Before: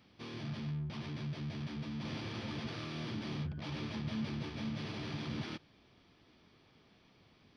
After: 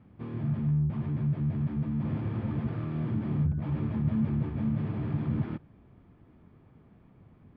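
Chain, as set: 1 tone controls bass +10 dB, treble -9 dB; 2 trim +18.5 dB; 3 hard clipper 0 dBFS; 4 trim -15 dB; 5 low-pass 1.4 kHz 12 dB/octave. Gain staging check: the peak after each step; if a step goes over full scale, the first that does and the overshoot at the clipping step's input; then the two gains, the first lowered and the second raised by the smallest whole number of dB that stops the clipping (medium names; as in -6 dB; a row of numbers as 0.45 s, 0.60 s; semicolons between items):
-20.5 dBFS, -2.0 dBFS, -2.0 dBFS, -17.0 dBFS, -17.0 dBFS; nothing clips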